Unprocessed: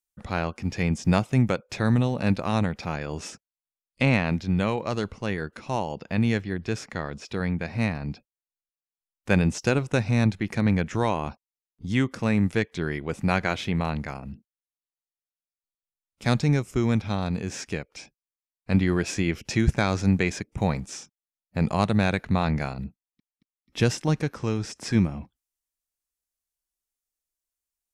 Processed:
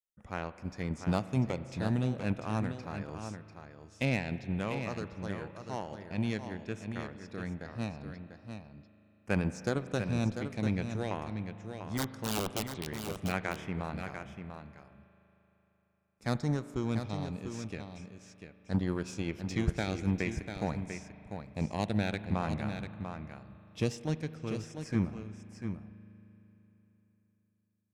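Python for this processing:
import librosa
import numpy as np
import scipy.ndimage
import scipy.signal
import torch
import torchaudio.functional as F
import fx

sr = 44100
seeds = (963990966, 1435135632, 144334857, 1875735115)

p1 = fx.overflow_wrap(x, sr, gain_db=16.0, at=(11.97, 13.05), fade=0.02)
p2 = fx.filter_lfo_notch(p1, sr, shape='saw_down', hz=0.45, low_hz=940.0, high_hz=5100.0, q=1.6)
p3 = fx.cheby_harmonics(p2, sr, harmonics=(7,), levels_db=(-24,), full_scale_db=-8.5)
p4 = p3 + fx.echo_single(p3, sr, ms=694, db=-8.0, dry=0)
p5 = fx.rev_spring(p4, sr, rt60_s=3.7, pass_ms=(38,), chirp_ms=75, drr_db=13.0)
y = F.gain(torch.from_numpy(p5), -8.5).numpy()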